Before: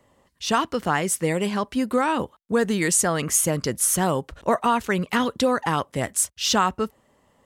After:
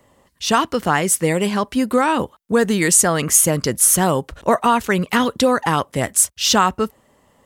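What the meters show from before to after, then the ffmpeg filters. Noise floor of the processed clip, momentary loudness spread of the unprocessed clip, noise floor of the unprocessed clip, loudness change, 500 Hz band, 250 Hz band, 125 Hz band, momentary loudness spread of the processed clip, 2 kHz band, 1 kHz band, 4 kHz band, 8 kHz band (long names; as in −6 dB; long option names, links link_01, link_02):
−59 dBFS, 6 LU, −64 dBFS, +6.0 dB, +5.0 dB, +5.0 dB, +5.0 dB, 7 LU, +5.0 dB, +5.0 dB, +5.5 dB, +7.0 dB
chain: -af "highshelf=frequency=10000:gain=5.5,volume=5dB"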